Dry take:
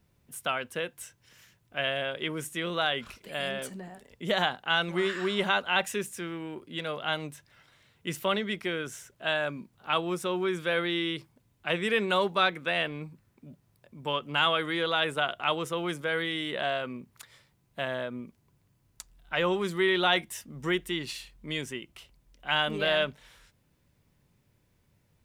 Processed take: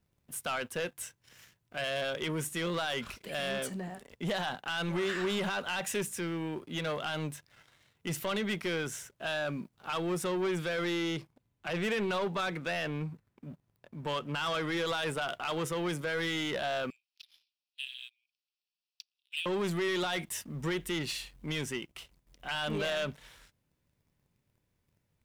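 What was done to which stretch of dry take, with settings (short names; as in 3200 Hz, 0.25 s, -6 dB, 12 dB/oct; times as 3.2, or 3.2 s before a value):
10.85–14.77 high shelf 5300 Hz -7.5 dB
16.9–19.46 Chebyshev band-pass 2500–5600 Hz, order 4
whole clip: dynamic EQ 160 Hz, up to +4 dB, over -54 dBFS, Q 5.3; limiter -21 dBFS; sample leveller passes 2; gain -5 dB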